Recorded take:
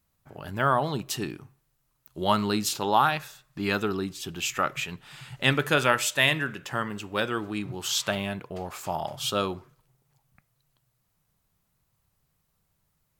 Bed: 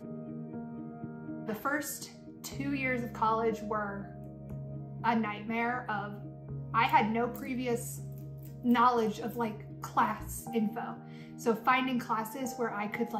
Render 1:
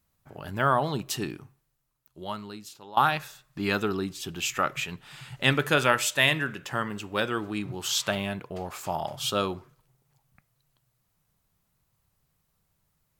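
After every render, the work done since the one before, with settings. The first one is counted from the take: 1.39–2.97 fade out quadratic, to -19 dB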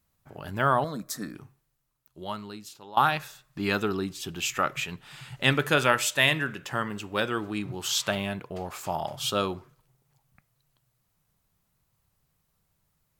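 0.84–1.35 fixed phaser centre 570 Hz, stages 8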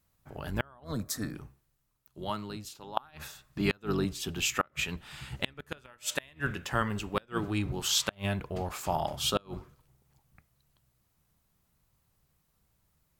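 octaver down 1 oct, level -3 dB; flipped gate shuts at -12 dBFS, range -33 dB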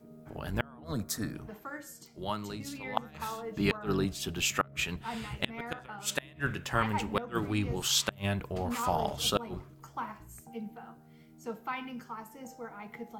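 add bed -10 dB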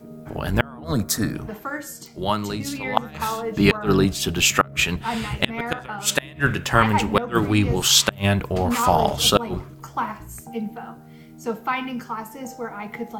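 gain +12 dB; limiter -1 dBFS, peak gain reduction 2.5 dB

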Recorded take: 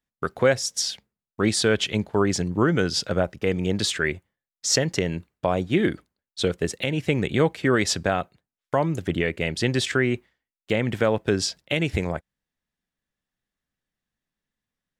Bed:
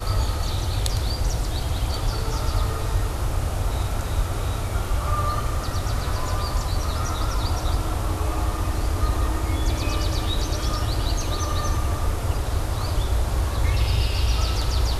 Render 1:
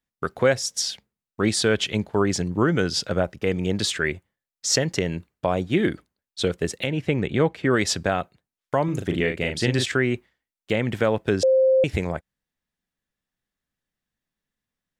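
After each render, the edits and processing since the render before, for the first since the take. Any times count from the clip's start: 6.87–7.71 high shelf 4900 Hz -11.5 dB; 8.84–9.86 doubler 40 ms -6 dB; 11.43–11.84 bleep 525 Hz -14 dBFS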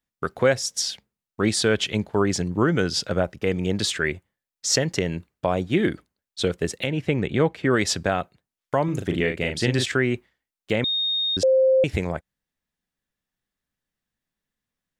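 10.84–11.37 bleep 3700 Hz -21 dBFS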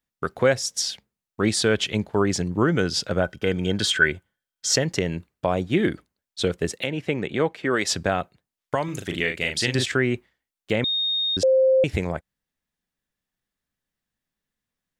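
3.22–4.73 small resonant body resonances 1500/3200 Hz, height 16 dB; 6.72–7.9 HPF 190 Hz -> 390 Hz 6 dB/oct; 8.75–9.75 tilt shelf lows -6 dB, about 1300 Hz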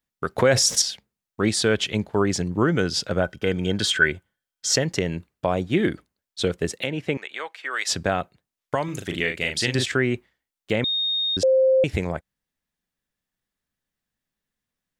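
0.38–0.82 fast leveller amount 70%; 7.17–7.88 HPF 1100 Hz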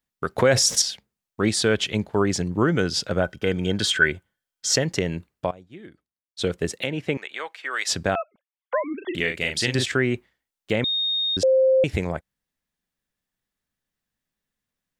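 5.02–6.86 dip -21.5 dB, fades 0.49 s logarithmic; 8.15–9.15 sine-wave speech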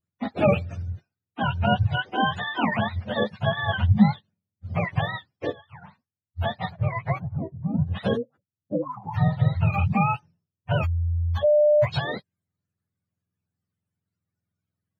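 spectrum mirrored in octaves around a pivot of 560 Hz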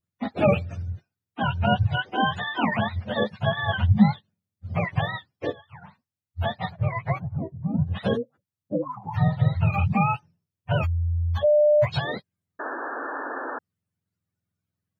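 12.59–13.59 painted sound noise 240–1800 Hz -32 dBFS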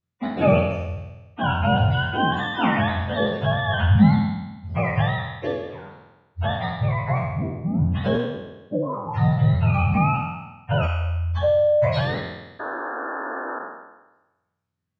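spectral trails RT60 1.10 s; air absorption 73 m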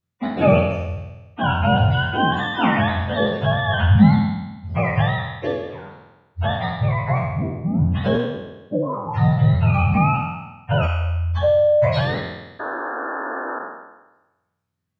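gain +2.5 dB

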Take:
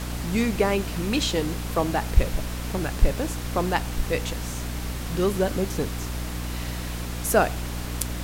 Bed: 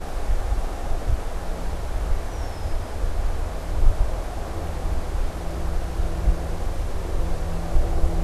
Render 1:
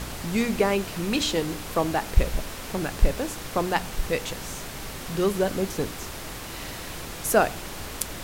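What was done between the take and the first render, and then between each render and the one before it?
de-hum 60 Hz, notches 5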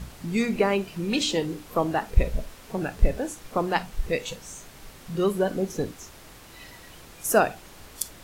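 noise print and reduce 11 dB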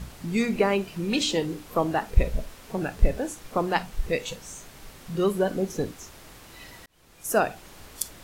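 6.86–7.85 fade in equal-power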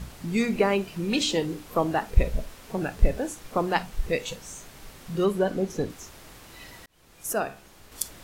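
5.25–5.9 high shelf 7900 Hz -7 dB; 7.33–7.92 resonator 68 Hz, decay 0.43 s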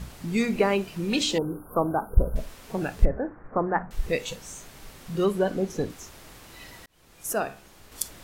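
1.38–2.36 brick-wall FIR band-stop 1600–9300 Hz; 3.05–3.91 steep low-pass 1800 Hz 48 dB/oct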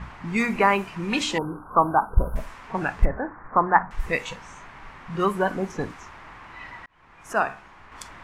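low-pass opened by the level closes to 3000 Hz, open at -19 dBFS; graphic EQ 500/1000/2000/4000 Hz -5/+12/+7/-5 dB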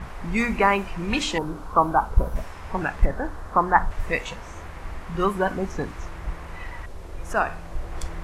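add bed -11 dB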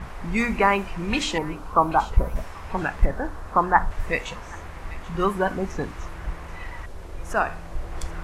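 thin delay 0.783 s, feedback 35%, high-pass 1800 Hz, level -16.5 dB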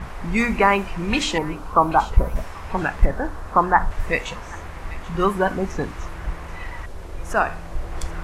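gain +3 dB; limiter -3 dBFS, peak gain reduction 2.5 dB

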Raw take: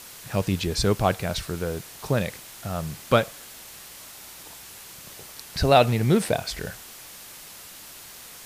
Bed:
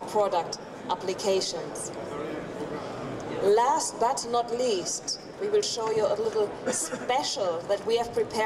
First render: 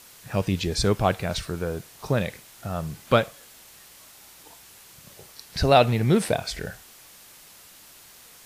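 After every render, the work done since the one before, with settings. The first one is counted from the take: noise print and reduce 6 dB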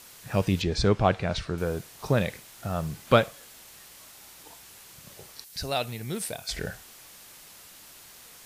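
0.62–1.58 air absorption 95 m; 2.27–3.04 companded quantiser 8-bit; 5.44–6.49 pre-emphasis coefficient 0.8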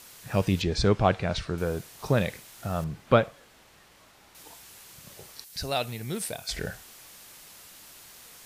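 2.84–4.35 LPF 1900 Hz 6 dB/oct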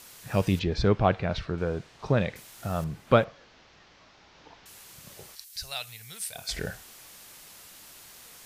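0.59–2.36 air absorption 140 m; 3.24–4.66 delta modulation 32 kbps, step -56.5 dBFS; 5.35–6.36 passive tone stack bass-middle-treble 10-0-10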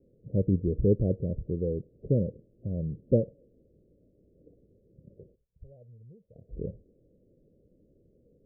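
steep low-pass 540 Hz 72 dB/oct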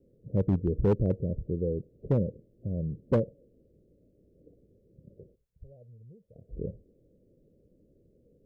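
overloaded stage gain 18 dB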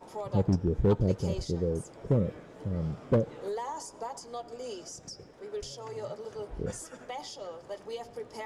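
add bed -13.5 dB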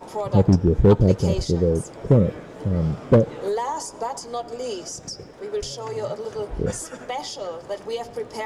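gain +10 dB

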